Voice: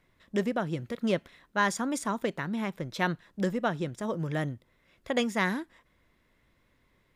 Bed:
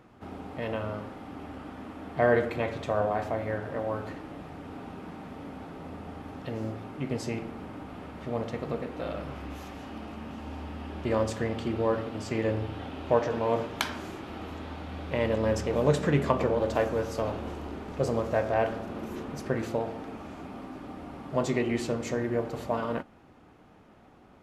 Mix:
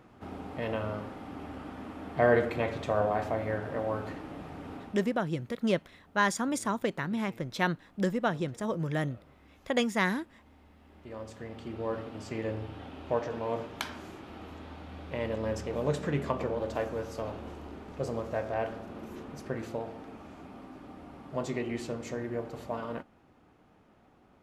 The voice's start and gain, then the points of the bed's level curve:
4.60 s, 0.0 dB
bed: 0:04.74 −0.5 dB
0:05.33 −20.5 dB
0:10.75 −20.5 dB
0:11.97 −6 dB

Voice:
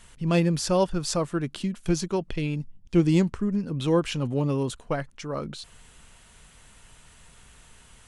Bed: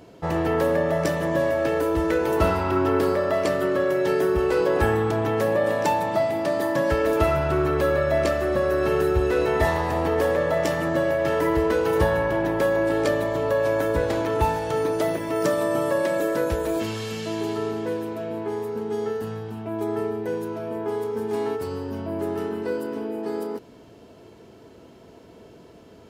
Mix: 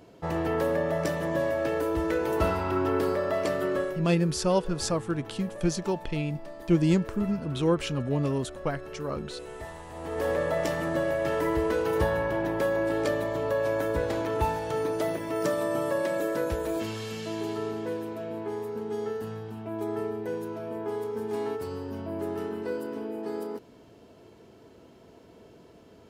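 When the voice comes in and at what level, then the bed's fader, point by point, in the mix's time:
3.75 s, −2.0 dB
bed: 0:03.79 −5 dB
0:04.09 −19.5 dB
0:09.88 −19.5 dB
0:10.29 −5 dB

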